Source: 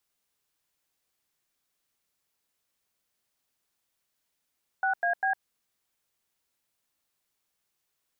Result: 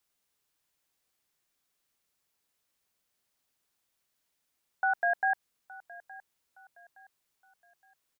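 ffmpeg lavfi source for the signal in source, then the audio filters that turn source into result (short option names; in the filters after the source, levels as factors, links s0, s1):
-f lavfi -i "aevalsrc='0.0501*clip(min(mod(t,0.199),0.106-mod(t,0.199))/0.002,0,1)*(eq(floor(t/0.199),0)*(sin(2*PI*770*mod(t,0.199))+sin(2*PI*1477*mod(t,0.199)))+eq(floor(t/0.199),1)*(sin(2*PI*697*mod(t,0.199))+sin(2*PI*1633*mod(t,0.199)))+eq(floor(t/0.199),2)*(sin(2*PI*770*mod(t,0.199))+sin(2*PI*1633*mod(t,0.199))))':d=0.597:s=44100"
-af "aecho=1:1:867|1734|2601:0.1|0.036|0.013"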